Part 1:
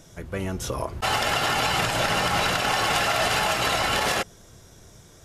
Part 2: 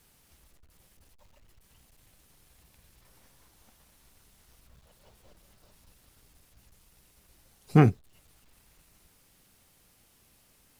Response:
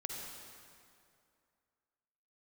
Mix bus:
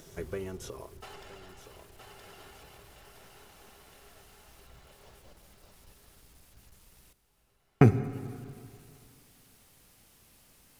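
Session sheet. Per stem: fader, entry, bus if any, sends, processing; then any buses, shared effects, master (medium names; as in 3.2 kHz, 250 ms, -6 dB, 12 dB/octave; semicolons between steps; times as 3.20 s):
1.44 s -0.5 dB -> 2.12 s -9.5 dB, 0.00 s, no send, echo send -23 dB, peaking EQ 400 Hz +14.5 dB 0.24 oct; compression, threshold -26 dBFS, peak gain reduction 8 dB; crossover distortion -56.5 dBFS; auto duck -24 dB, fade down 1.45 s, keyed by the second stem
0.0 dB, 0.00 s, muted 7.13–7.81 s, send -7 dB, no echo send, none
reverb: on, RT60 2.4 s, pre-delay 43 ms
echo: feedback delay 969 ms, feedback 39%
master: upward compressor, threshold -60 dBFS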